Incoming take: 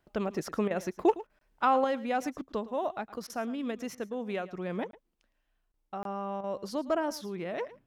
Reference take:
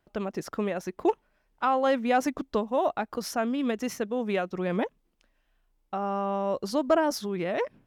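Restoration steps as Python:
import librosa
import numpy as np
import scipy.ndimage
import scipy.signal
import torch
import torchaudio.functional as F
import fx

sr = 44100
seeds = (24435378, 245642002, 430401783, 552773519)

y = fx.fix_interpolate(x, sr, at_s=(1.39, 4.91, 5.72, 6.03), length_ms=22.0)
y = fx.fix_interpolate(y, sr, at_s=(0.68, 1.27, 3.27, 3.95, 6.41), length_ms=26.0)
y = fx.fix_echo_inverse(y, sr, delay_ms=110, level_db=-17.5)
y = fx.gain(y, sr, db=fx.steps((0.0, 0.0), (1.84, 6.5)))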